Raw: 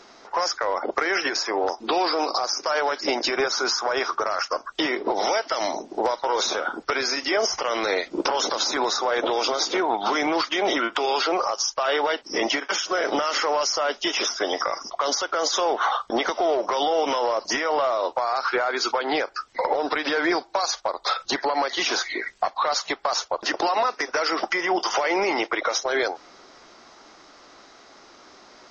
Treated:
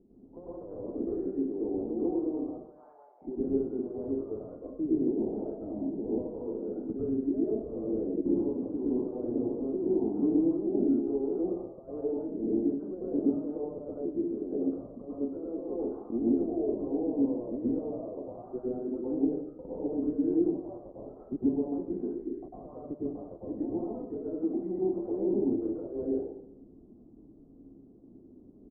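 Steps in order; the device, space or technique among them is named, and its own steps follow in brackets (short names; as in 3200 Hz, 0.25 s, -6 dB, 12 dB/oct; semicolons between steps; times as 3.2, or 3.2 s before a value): 2.55–3.22 steep high-pass 770 Hz 36 dB/oct; next room (LPF 290 Hz 24 dB/oct; reverb RT60 0.70 s, pre-delay 97 ms, DRR -8 dB); feedback echo 0.14 s, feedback 47%, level -24 dB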